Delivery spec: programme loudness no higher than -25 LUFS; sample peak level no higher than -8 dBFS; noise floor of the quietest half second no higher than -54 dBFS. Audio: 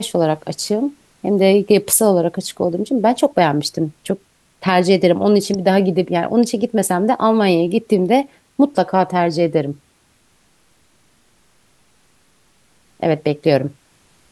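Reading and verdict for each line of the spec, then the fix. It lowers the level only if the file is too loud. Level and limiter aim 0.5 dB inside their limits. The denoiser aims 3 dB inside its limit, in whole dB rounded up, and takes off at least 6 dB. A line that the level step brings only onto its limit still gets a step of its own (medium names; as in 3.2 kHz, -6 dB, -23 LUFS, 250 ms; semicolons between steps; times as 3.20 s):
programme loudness -17.0 LUFS: fail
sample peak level -1.5 dBFS: fail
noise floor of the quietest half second -57 dBFS: pass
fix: trim -8.5 dB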